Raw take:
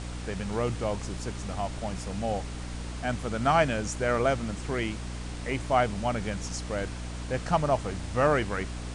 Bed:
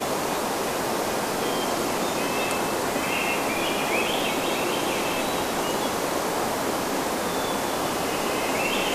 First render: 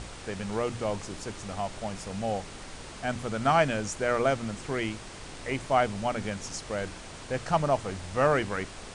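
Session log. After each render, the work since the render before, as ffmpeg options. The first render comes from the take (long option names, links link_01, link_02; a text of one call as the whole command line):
ffmpeg -i in.wav -af "bandreject=frequency=60:width_type=h:width=6,bandreject=frequency=120:width_type=h:width=6,bandreject=frequency=180:width_type=h:width=6,bandreject=frequency=240:width_type=h:width=6,bandreject=frequency=300:width_type=h:width=6" out.wav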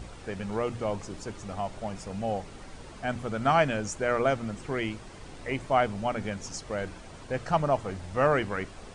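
ffmpeg -i in.wav -af "afftdn=noise_reduction=8:noise_floor=-44" out.wav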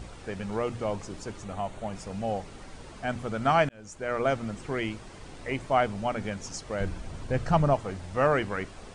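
ffmpeg -i in.wav -filter_complex "[0:a]asettb=1/sr,asplit=3[link_01][link_02][link_03];[link_01]atrim=end=1.444[link_04];[link_02]atrim=start=1.44:end=1.93,asetpts=PTS-STARTPTS,afade=type=in:duration=0.004:curve=qsin,afade=type=out:start_time=0.486:duration=0.004:curve=qsin,equalizer=frequency=5100:width=5.4:gain=-12[link_05];[link_03]atrim=start=1.926[link_06];[link_04][link_05]acrossfade=duration=0.004:curve1=hsin:curve2=qsin[link_07];[link_07][link_06]acrossfade=duration=0.004:curve1=qsin:curve2=hsin,asettb=1/sr,asplit=3[link_08][link_09][link_10];[link_08]atrim=end=6.804[link_11];[link_09]atrim=start=6.8:end=7.74,asetpts=PTS-STARTPTS,afade=type=in:duration=0.004:curve=qsin,afade=type=out:start_time=0.936:duration=0.004:curve=qsin,lowshelf=frequency=190:gain=11.5[link_12];[link_10]atrim=start=7.736[link_13];[link_11][link_12]acrossfade=duration=0.004:curve1=hsin:curve2=qsin[link_14];[link_14][link_13]acrossfade=duration=0.004:curve1=qsin:curve2=hsin,asplit=2[link_15][link_16];[link_15]atrim=end=3.69,asetpts=PTS-STARTPTS,afade=type=out:start_time=3.686:duration=0.004:curve=hsin[link_17];[link_16]atrim=start=3.69,asetpts=PTS-STARTPTS,afade=type=in:duration=0.64[link_18];[link_17][link_18]concat=n=2:v=0:a=1" out.wav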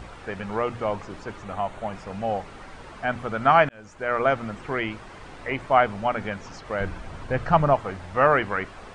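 ffmpeg -i in.wav -filter_complex "[0:a]equalizer=frequency=1300:width_type=o:width=2.3:gain=8,acrossover=split=4300[link_01][link_02];[link_02]acompressor=threshold=-59dB:ratio=4:attack=1:release=60[link_03];[link_01][link_03]amix=inputs=2:normalize=0" out.wav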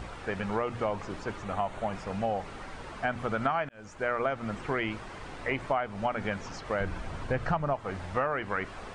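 ffmpeg -i in.wav -af "acompressor=threshold=-25dB:ratio=12" out.wav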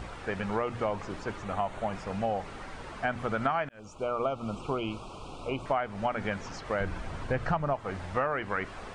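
ffmpeg -i in.wav -filter_complex "[0:a]asettb=1/sr,asplit=3[link_01][link_02][link_03];[link_01]atrim=end=3.794[link_04];[link_02]atrim=start=3.79:end=5.66,asetpts=PTS-STARTPTS,afade=type=in:duration=0.004:curve=qsin,afade=type=out:start_time=1.866:duration=0.004:curve=qsin,asuperstop=centerf=1800:order=8:qfactor=1.7[link_05];[link_03]atrim=start=5.656[link_06];[link_04][link_05]acrossfade=duration=0.004:curve1=hsin:curve2=qsin[link_07];[link_07][link_06]acrossfade=duration=0.004:curve1=qsin:curve2=hsin" out.wav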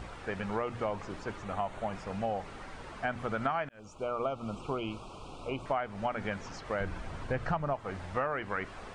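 ffmpeg -i in.wav -af "volume=-3dB" out.wav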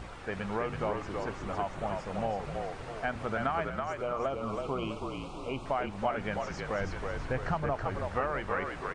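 ffmpeg -i in.wav -filter_complex "[0:a]asplit=7[link_01][link_02][link_03][link_04][link_05][link_06][link_07];[link_02]adelay=326,afreqshift=-47,volume=-4dB[link_08];[link_03]adelay=652,afreqshift=-94,volume=-10.7dB[link_09];[link_04]adelay=978,afreqshift=-141,volume=-17.5dB[link_10];[link_05]adelay=1304,afreqshift=-188,volume=-24.2dB[link_11];[link_06]adelay=1630,afreqshift=-235,volume=-31dB[link_12];[link_07]adelay=1956,afreqshift=-282,volume=-37.7dB[link_13];[link_01][link_08][link_09][link_10][link_11][link_12][link_13]amix=inputs=7:normalize=0" out.wav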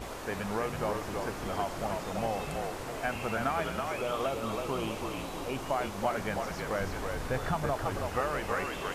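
ffmpeg -i in.wav -i bed.wav -filter_complex "[1:a]volume=-16dB[link_01];[0:a][link_01]amix=inputs=2:normalize=0" out.wav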